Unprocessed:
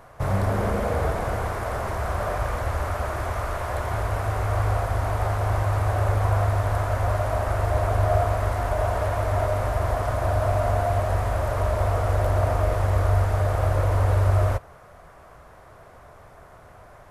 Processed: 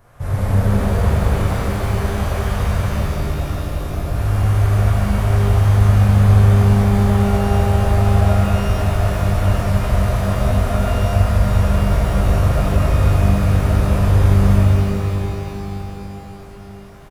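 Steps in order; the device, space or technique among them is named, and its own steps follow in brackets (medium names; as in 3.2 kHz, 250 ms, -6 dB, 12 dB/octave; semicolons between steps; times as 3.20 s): smiley-face EQ (bass shelf 150 Hz +8.5 dB; peaking EQ 810 Hz -4.5 dB 1.6 oct; treble shelf 9.9 kHz +6 dB); 2.89–4.15 s: ten-band graphic EQ 125 Hz -11 dB, 250 Hz +6 dB, 1 kHz -6 dB, 2 kHz -11 dB, 8 kHz -7 dB; feedback delay 633 ms, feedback 42%, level -17.5 dB; pitch-shifted reverb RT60 3.5 s, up +12 st, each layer -8 dB, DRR -9.5 dB; trim -6.5 dB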